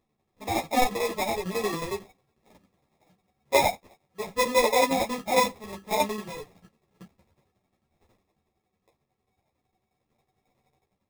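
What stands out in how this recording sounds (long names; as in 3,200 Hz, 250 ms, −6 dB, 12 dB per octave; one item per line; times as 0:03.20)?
aliases and images of a low sample rate 1,500 Hz, jitter 0%
tremolo saw down 11 Hz, depth 70%
a shimmering, thickened sound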